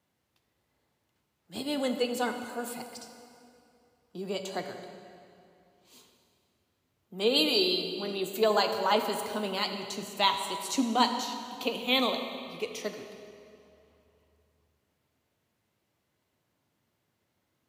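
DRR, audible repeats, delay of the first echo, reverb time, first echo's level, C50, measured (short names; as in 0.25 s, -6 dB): 5.5 dB, none, none, 2.7 s, none, 6.5 dB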